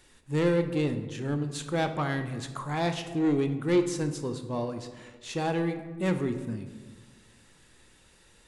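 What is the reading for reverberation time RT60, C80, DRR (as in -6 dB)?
1.4 s, 11.5 dB, 7.0 dB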